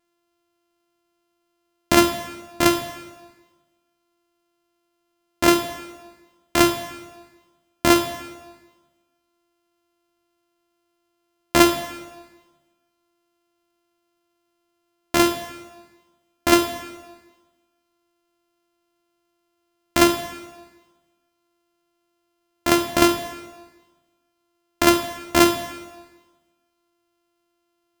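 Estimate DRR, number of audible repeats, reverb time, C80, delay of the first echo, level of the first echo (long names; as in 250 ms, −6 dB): 6.5 dB, no echo audible, 1.3 s, 11.0 dB, no echo audible, no echo audible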